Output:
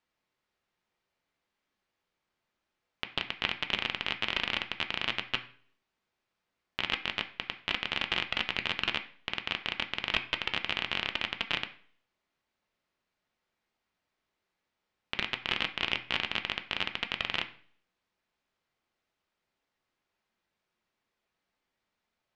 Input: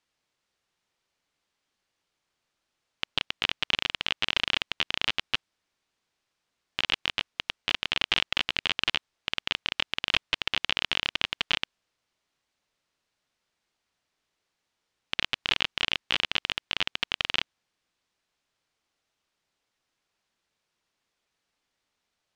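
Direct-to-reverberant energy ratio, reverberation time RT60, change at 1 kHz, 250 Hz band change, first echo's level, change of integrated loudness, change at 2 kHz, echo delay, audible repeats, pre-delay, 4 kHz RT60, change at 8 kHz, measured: 6.0 dB, 0.55 s, −1.0 dB, +0.5 dB, no echo audible, −4.0 dB, −2.5 dB, no echo audible, no echo audible, 3 ms, 0.50 s, −9.0 dB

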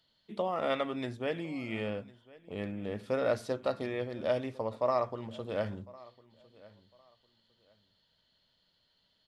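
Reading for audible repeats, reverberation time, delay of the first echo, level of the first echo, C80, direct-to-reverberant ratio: 2, no reverb audible, 1,054 ms, −22.0 dB, no reverb audible, no reverb audible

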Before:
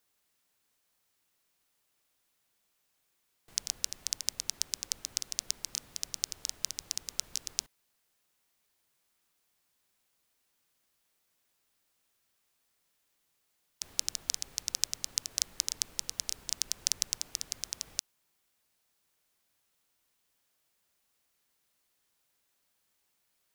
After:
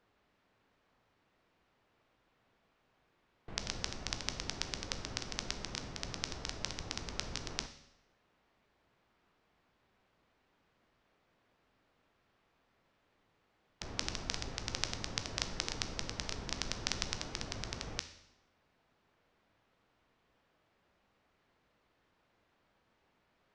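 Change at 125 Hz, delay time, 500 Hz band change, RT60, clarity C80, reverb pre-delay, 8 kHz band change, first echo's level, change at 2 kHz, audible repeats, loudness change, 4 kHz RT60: +14.5 dB, no echo audible, +12.5 dB, 0.80 s, 14.5 dB, 12 ms, −11.0 dB, no echo audible, +6.0 dB, no echo audible, −5.5 dB, 0.80 s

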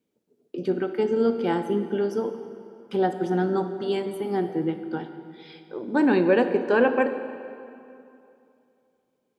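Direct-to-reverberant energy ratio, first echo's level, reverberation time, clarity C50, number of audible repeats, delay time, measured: 9.0 dB, no echo audible, 2.7 s, 9.5 dB, no echo audible, no echo audible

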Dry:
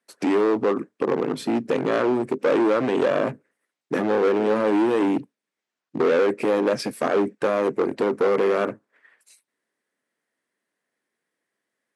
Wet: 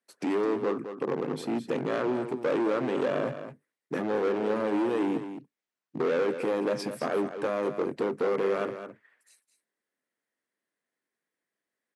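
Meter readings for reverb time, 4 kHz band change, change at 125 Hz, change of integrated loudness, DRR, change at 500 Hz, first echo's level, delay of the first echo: no reverb audible, −7.0 dB, −4.5 dB, −7.0 dB, no reverb audible, −7.0 dB, −10.0 dB, 212 ms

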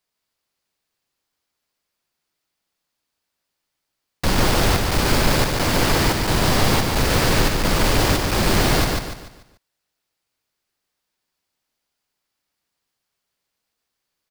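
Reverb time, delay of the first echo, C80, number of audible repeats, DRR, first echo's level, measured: no reverb audible, 146 ms, no reverb audible, 4, no reverb audible, −3.0 dB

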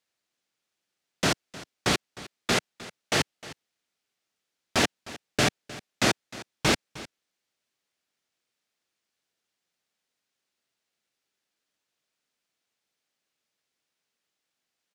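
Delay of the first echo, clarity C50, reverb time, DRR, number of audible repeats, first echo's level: 308 ms, no reverb audible, no reverb audible, no reverb audible, 1, −18.0 dB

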